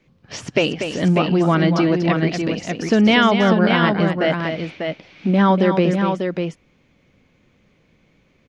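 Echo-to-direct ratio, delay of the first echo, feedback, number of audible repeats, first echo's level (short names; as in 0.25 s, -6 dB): -3.5 dB, 0.24 s, no steady repeat, 2, -8.0 dB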